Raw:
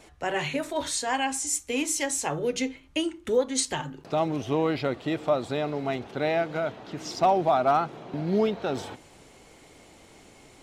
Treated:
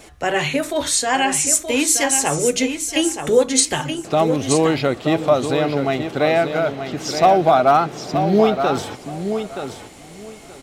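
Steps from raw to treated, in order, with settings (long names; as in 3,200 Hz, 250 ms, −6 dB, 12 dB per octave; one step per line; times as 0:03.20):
high-shelf EQ 8,300 Hz +6.5 dB
notch filter 940 Hz, Q 16
on a send: repeating echo 925 ms, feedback 18%, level −8 dB
on the sum: level +8.5 dB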